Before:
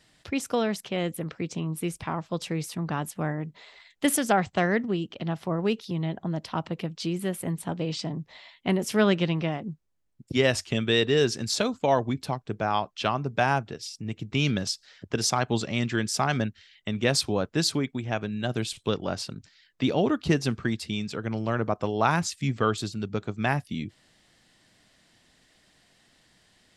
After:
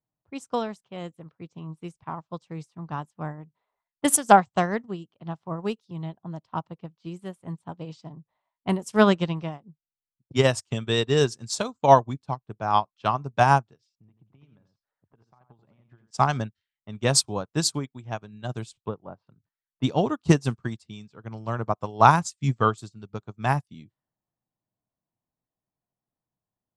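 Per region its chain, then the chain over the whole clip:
0:13.95–0:16.11: downward compressor 20 to 1, threshold −33 dBFS + high-frequency loss of the air 56 metres + single-tap delay 86 ms −6.5 dB
0:18.77–0:19.27: treble cut that deepens with the level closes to 1,100 Hz, closed at −26.5 dBFS + low-shelf EQ 160 Hz −3 dB
whole clip: low-pass that shuts in the quiet parts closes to 850 Hz, open at −23.5 dBFS; octave-band graphic EQ 125/1,000/2,000/8,000 Hz +7/+9/−4/+10 dB; expander for the loud parts 2.5 to 1, over −36 dBFS; level +5 dB

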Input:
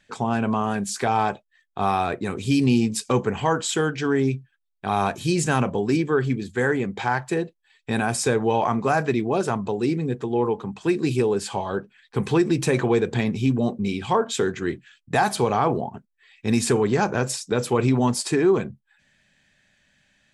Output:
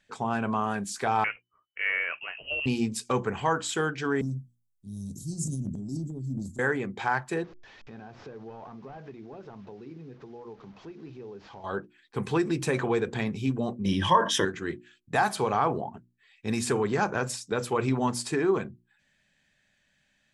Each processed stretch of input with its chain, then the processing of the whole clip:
0:01.24–0:02.66: low-shelf EQ 350 Hz −12 dB + voice inversion scrambler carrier 3,000 Hz
0:04.21–0:06.59: inverse Chebyshev band-stop filter 760–2,100 Hz, stop band 70 dB + transient designer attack −3 dB, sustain +8 dB
0:07.44–0:11.64: linear delta modulator 32 kbit/s, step −35 dBFS + high-shelf EQ 2,500 Hz −10.5 dB + downward compressor 2.5 to 1, threshold −40 dBFS
0:13.85–0:14.45: EQ curve with evenly spaced ripples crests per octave 1.2, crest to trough 15 dB + envelope flattener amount 50%
whole clip: mains-hum notches 60/120/180/240/300/360 Hz; dynamic equaliser 1,300 Hz, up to +5 dB, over −35 dBFS, Q 1; level −6.5 dB

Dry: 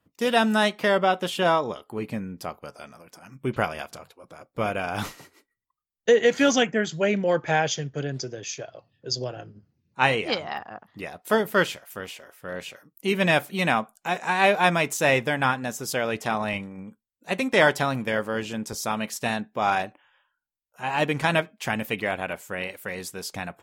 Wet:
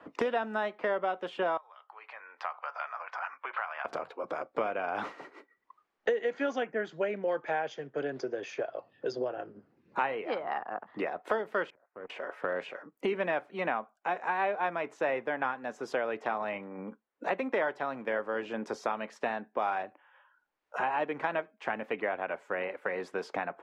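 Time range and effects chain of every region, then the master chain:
0:01.57–0:03.85: downward compressor 2.5 to 1, threshold −38 dBFS + high-pass filter 910 Hz 24 dB per octave + high-frequency loss of the air 170 metres
0:11.70–0:12.10: output level in coarse steps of 20 dB + Gaussian smoothing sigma 5.4 samples + tube saturation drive 32 dB, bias 0.5
whole clip: low-pass filter 4,700 Hz 12 dB per octave; three-way crossover with the lows and the highs turned down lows −22 dB, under 280 Hz, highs −16 dB, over 2,000 Hz; multiband upward and downward compressor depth 100%; level −6 dB

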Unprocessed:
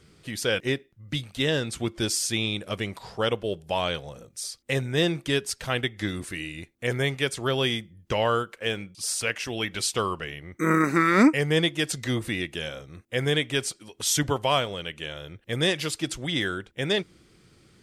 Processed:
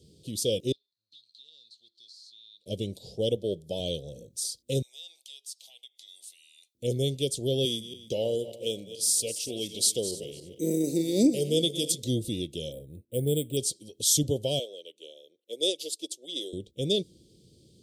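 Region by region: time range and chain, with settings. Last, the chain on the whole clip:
0:00.72–0:02.66: mu-law and A-law mismatch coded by mu + resonant band-pass 4,200 Hz, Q 14 + downward compressor 2.5 to 1, threshold −51 dBFS
0:03.36–0:03.80: high-pass filter 95 Hz + notch filter 2,800 Hz, Q 6.3
0:04.82–0:06.75: Chebyshev high-pass filter 840 Hz, order 4 + downward compressor 2.5 to 1, threshold −43 dBFS
0:07.65–0:12.03: feedback delay that plays each chunk backwards 145 ms, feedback 48%, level −12 dB + high-pass filter 260 Hz 6 dB per octave + high-shelf EQ 10,000 Hz +5.5 dB
0:12.72–0:13.57: high-frequency loss of the air 400 metres + bad sample-rate conversion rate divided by 4×, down none, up hold
0:14.59–0:16.53: high-pass filter 360 Hz 24 dB per octave + expander for the loud parts, over −47 dBFS
whole clip: elliptic band-stop filter 540–3,500 Hz, stop band 80 dB; dynamic equaliser 9,900 Hz, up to +4 dB, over −46 dBFS, Q 0.71; high-pass filter 56 Hz

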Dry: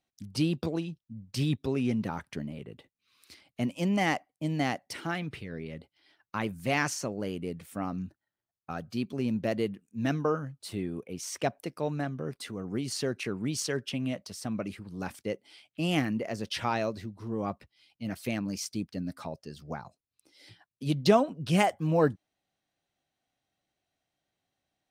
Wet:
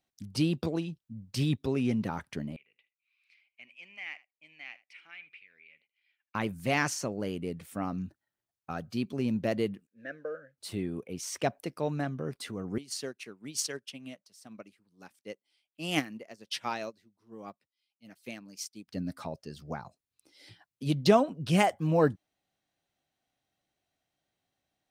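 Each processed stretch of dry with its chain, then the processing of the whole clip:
0:02.56–0:06.35: resonant band-pass 2,400 Hz, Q 7.8 + single-tap delay 77 ms −18.5 dB
0:09.87–0:10.58: noise that follows the level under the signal 33 dB + pair of resonant band-passes 950 Hz, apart 1.6 octaves
0:12.78–0:18.88: high-pass filter 170 Hz + high-shelf EQ 2,100 Hz +7 dB + expander for the loud parts 2.5 to 1, over −40 dBFS
whole clip: no processing

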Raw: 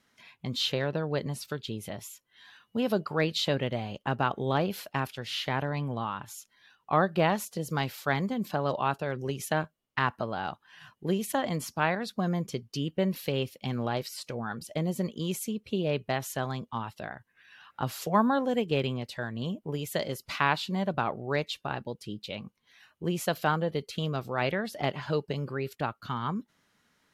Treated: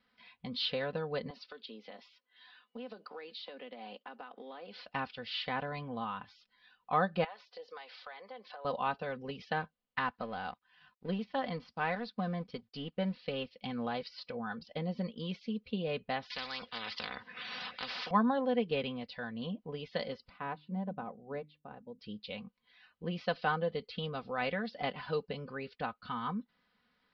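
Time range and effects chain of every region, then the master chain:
0:01.30–0:04.86: Butterworth high-pass 240 Hz + downward compressor 10 to 1, threshold −37 dBFS + floating-point word with a short mantissa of 4 bits
0:07.24–0:08.65: high-pass filter 460 Hz 24 dB per octave + downward compressor 5 to 1, threshold −39 dBFS
0:10.00–0:13.51: mu-law and A-law mismatch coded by A + de-essing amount 90%
0:16.30–0:18.11: high-pass filter 140 Hz + every bin compressed towards the loudest bin 10 to 1
0:20.29–0:21.99: resonant band-pass 220 Hz, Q 0.53 + mains-hum notches 50/100/150/200/250/300 Hz + expander for the loud parts, over −41 dBFS
whole clip: Butterworth low-pass 5,000 Hz 72 dB per octave; parametric band 300 Hz −10 dB 0.26 octaves; comb filter 4 ms, depth 66%; level −6 dB

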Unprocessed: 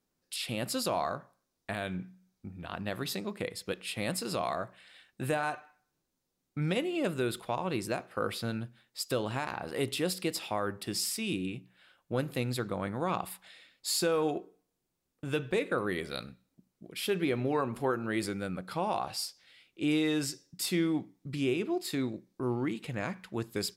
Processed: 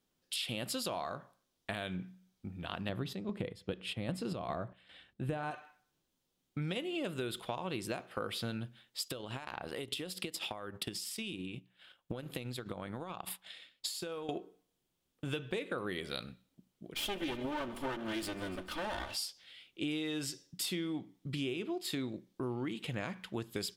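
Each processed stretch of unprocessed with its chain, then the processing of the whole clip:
0:02.89–0:05.51: high-pass filter 45 Hz + spectral tilt −3 dB per octave + square-wave tremolo 2.5 Hz, depth 60%, duty 60%
0:09.08–0:14.29: downward compressor 12 to 1, threshold −38 dBFS + transient designer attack +8 dB, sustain −8 dB
0:16.94–0:19.15: lower of the sound and its delayed copy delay 3.3 ms + echo machine with several playback heads 147 ms, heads first and second, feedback 57%, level −24 dB
whole clip: parametric band 3,200 Hz +8 dB 0.45 octaves; downward compressor, threshold −34 dBFS

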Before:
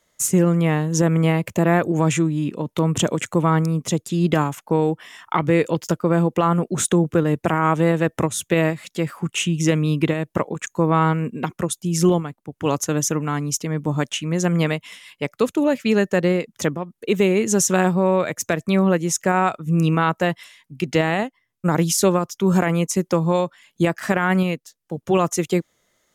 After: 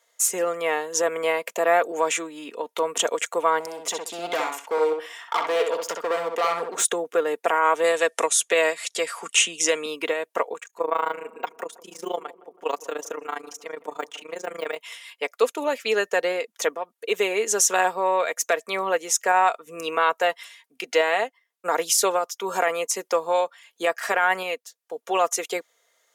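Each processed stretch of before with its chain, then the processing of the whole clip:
0:03.60–0:06.83: hard clipping −18 dBFS + feedback echo with a low-pass in the loop 64 ms, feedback 23%, low-pass 3,800 Hz, level −4 dB
0:07.84–0:09.86: low-pass filter 10,000 Hz 24 dB per octave + high-shelf EQ 4,600 Hz +9.5 dB + multiband upward and downward compressor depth 40%
0:10.59–0:14.76: de-essing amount 85% + amplitude modulation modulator 27 Hz, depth 85% + feedback echo with a low-pass in the loop 161 ms, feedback 58%, low-pass 1,300 Hz, level −18 dB
whole clip: high-pass filter 450 Hz 24 dB per octave; comb filter 4.3 ms, depth 44%

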